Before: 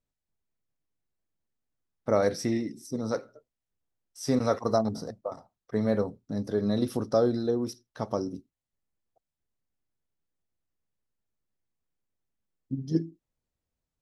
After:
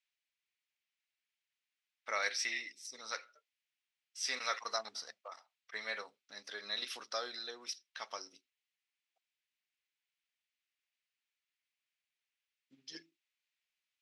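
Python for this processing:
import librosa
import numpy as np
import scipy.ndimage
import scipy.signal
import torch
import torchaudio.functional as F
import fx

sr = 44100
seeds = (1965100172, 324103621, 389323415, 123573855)

y = fx.ladder_bandpass(x, sr, hz=2900.0, resonance_pct=40)
y = F.gain(torch.from_numpy(y), 17.5).numpy()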